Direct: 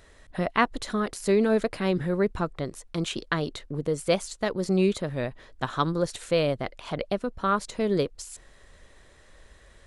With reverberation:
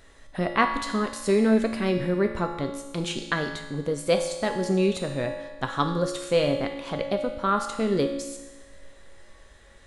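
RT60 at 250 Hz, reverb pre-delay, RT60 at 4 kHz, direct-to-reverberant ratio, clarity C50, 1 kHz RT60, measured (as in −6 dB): 1.2 s, 4 ms, 1.2 s, 3.5 dB, 6.5 dB, 1.2 s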